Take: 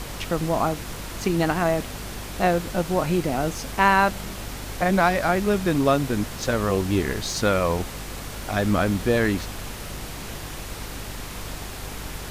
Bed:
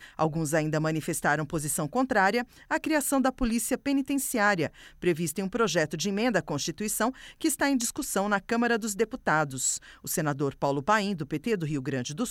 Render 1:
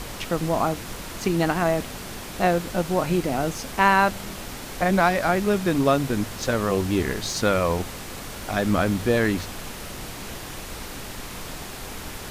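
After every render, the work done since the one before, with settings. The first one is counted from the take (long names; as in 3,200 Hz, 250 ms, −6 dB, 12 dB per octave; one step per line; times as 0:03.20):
hum removal 50 Hz, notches 3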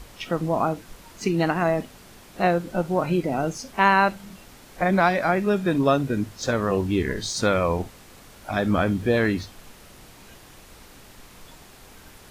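noise reduction from a noise print 12 dB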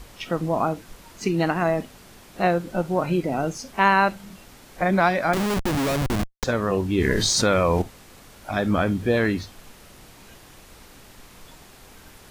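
0:05.33–0:06.44: comparator with hysteresis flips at −24 dBFS
0:06.98–0:07.82: envelope flattener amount 70%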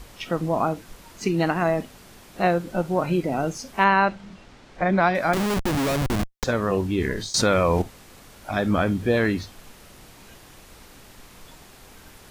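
0:03.84–0:05.15: high-frequency loss of the air 110 metres
0:06.85–0:07.34: fade out, to −18 dB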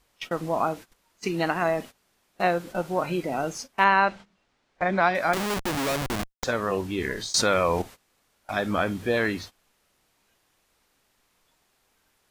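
noise gate −35 dBFS, range −19 dB
low-shelf EQ 330 Hz −9.5 dB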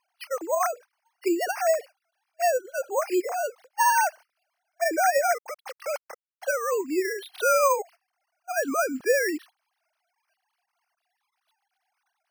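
three sine waves on the formant tracks
decimation without filtering 6×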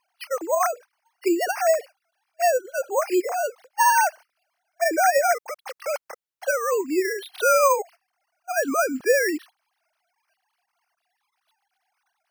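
level +3 dB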